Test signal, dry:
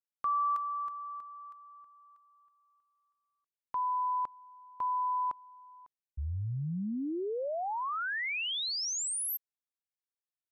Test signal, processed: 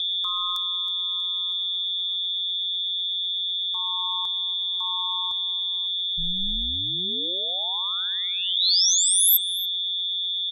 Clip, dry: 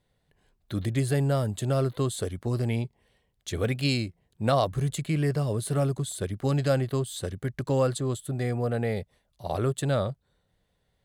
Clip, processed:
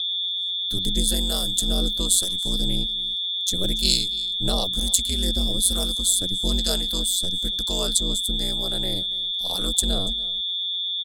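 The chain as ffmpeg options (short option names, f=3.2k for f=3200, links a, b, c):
-filter_complex "[0:a]acrossover=split=600[a][b];[a]aeval=exprs='val(0)*(1-0.5/2+0.5/2*cos(2*PI*1.1*n/s))':c=same[c];[b]aeval=exprs='val(0)*(1-0.5/2-0.5/2*cos(2*PI*1.1*n/s))':c=same[d];[c][d]amix=inputs=2:normalize=0,aeval=exprs='val(0)+0.0224*sin(2*PI*3500*n/s)':c=same,aecho=1:1:285:0.1,aexciter=amount=12.6:drive=2.7:freq=3.5k,aeval=exprs='val(0)*sin(2*PI*92*n/s)':c=same,lowshelf=f=130:g=11.5,volume=-1dB"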